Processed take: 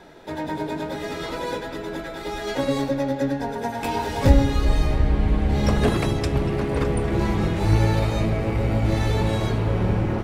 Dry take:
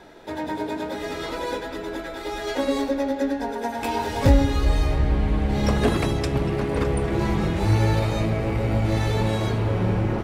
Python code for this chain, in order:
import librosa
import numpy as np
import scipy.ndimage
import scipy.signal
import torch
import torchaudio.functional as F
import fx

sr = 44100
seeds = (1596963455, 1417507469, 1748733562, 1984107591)

y = fx.octave_divider(x, sr, octaves=1, level_db=-5.0)